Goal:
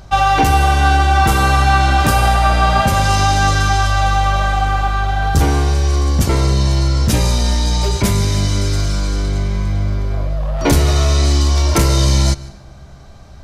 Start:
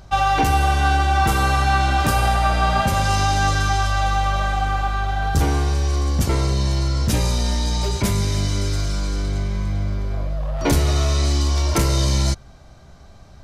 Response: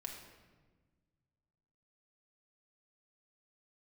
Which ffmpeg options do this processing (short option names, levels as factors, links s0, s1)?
-filter_complex "[0:a]asplit=2[s0][s1];[1:a]atrim=start_sample=2205,adelay=149[s2];[s1][s2]afir=irnorm=-1:irlink=0,volume=0.133[s3];[s0][s3]amix=inputs=2:normalize=0,volume=1.78"